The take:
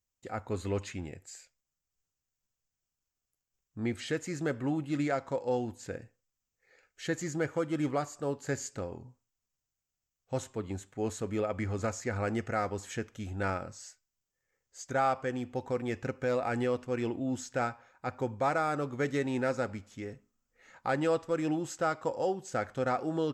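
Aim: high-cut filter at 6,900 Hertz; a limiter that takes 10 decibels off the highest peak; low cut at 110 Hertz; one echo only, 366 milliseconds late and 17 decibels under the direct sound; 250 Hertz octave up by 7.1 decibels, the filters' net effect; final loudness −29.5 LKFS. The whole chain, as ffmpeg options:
ffmpeg -i in.wav -af "highpass=110,lowpass=6900,equalizer=frequency=250:width_type=o:gain=9,alimiter=limit=-23.5dB:level=0:latency=1,aecho=1:1:366:0.141,volume=5dB" out.wav

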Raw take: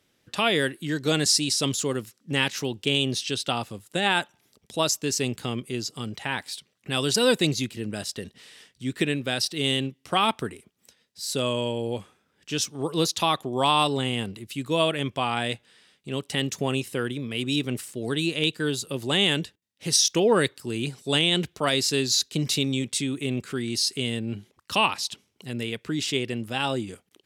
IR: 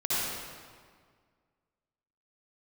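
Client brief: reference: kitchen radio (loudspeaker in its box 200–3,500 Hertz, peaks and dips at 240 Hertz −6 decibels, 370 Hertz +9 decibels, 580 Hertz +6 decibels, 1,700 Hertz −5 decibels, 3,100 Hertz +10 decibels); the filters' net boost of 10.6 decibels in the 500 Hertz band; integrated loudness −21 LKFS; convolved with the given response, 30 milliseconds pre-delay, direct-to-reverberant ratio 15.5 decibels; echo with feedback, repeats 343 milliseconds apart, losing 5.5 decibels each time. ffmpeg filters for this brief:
-filter_complex "[0:a]equalizer=frequency=500:width_type=o:gain=7,aecho=1:1:343|686|1029|1372|1715|2058|2401:0.531|0.281|0.149|0.079|0.0419|0.0222|0.0118,asplit=2[link_01][link_02];[1:a]atrim=start_sample=2205,adelay=30[link_03];[link_02][link_03]afir=irnorm=-1:irlink=0,volume=-25.5dB[link_04];[link_01][link_04]amix=inputs=2:normalize=0,highpass=200,equalizer=frequency=240:width_type=q:width=4:gain=-6,equalizer=frequency=370:width_type=q:width=4:gain=9,equalizer=frequency=580:width_type=q:width=4:gain=6,equalizer=frequency=1700:width_type=q:width=4:gain=-5,equalizer=frequency=3100:width_type=q:width=4:gain=10,lowpass=frequency=3500:width=0.5412,lowpass=frequency=3500:width=1.3066,volume=-1.5dB"

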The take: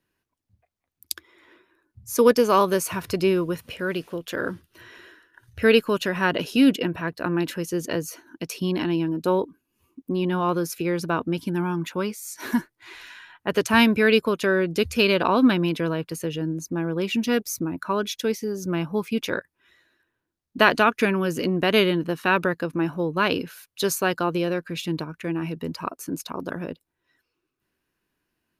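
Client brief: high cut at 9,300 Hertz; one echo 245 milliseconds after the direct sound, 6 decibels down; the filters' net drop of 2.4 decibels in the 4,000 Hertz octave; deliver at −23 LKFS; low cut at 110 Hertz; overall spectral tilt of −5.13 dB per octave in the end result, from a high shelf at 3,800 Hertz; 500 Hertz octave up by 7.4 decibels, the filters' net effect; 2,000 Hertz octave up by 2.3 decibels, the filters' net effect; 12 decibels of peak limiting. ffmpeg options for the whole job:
ffmpeg -i in.wav -af "highpass=110,lowpass=9300,equalizer=frequency=500:width_type=o:gain=9,equalizer=frequency=2000:width_type=o:gain=3.5,highshelf=frequency=3800:gain=4.5,equalizer=frequency=4000:width_type=o:gain=-9,alimiter=limit=-10.5dB:level=0:latency=1,aecho=1:1:245:0.501,volume=-1.5dB" out.wav

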